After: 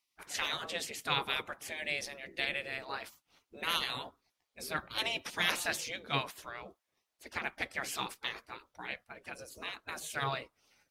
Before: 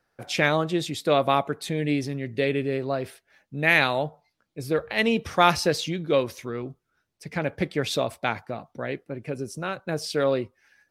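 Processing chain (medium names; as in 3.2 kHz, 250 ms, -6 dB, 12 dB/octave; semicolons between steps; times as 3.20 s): spectral gate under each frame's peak -15 dB weak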